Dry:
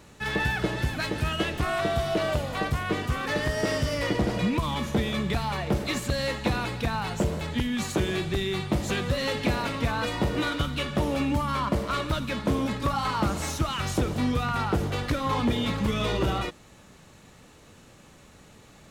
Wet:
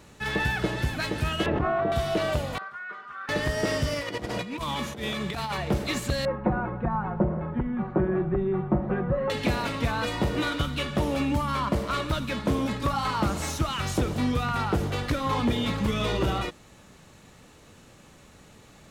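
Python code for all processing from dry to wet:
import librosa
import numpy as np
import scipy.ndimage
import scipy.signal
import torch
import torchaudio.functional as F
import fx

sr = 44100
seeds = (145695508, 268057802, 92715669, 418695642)

y = fx.chain(x, sr, fx.lowpass(hz=1100.0, slope=12),
    fx.low_shelf(hz=68.0, db=-12.0),
    fx.env_flatten(amount_pct=100), at=(1.46, 1.92))
y = fx.chain(y, sr, fx.bandpass_q(hz=1400.0, q=5.9),
    fx.comb(ms=5.0, depth=0.87), at=(2.58, 3.29))
y = fx.chain(y, sr, fx.highpass(hz=57.0, slope=12),
    fx.low_shelf(hz=270.0, db=-6.5),
    fx.over_compress(threshold_db=-31.0, ratio=-0.5), at=(3.94, 5.58))
y = fx.chain(y, sr, fx.lowpass(hz=1400.0, slope=24),
    fx.comb(ms=5.5, depth=0.65), at=(6.25, 9.3))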